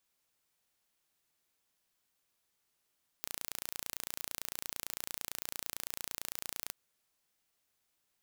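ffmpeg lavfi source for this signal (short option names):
-f lavfi -i "aevalsrc='0.282*eq(mod(n,1526),0)':d=3.48:s=44100"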